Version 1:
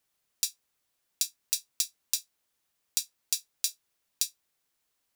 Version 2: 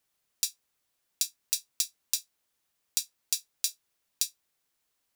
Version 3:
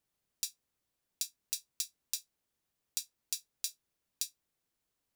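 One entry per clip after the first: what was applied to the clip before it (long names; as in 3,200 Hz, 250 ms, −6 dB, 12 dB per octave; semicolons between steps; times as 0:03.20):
no processing that can be heard
low-shelf EQ 500 Hz +10 dB; level −7.5 dB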